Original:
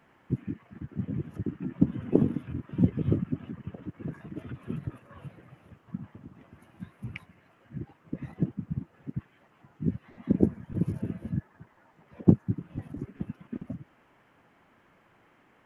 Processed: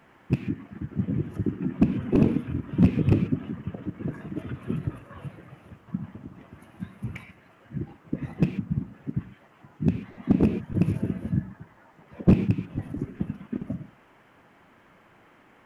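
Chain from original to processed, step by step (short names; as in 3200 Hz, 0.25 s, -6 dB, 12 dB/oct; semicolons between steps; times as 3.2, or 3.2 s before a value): rattling part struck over -20 dBFS, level -21 dBFS; non-linear reverb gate 0.16 s flat, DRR 11 dB; slew limiter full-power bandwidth 34 Hz; gain +5.5 dB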